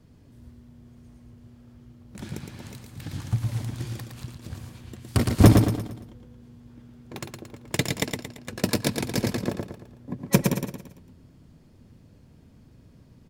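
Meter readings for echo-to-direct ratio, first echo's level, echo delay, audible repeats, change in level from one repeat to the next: −4.0 dB, −5.0 dB, 113 ms, 4, −7.5 dB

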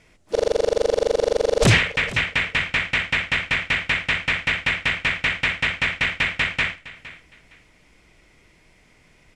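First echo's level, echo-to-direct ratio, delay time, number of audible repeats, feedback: −17.5 dB, −17.5 dB, 462 ms, 2, 23%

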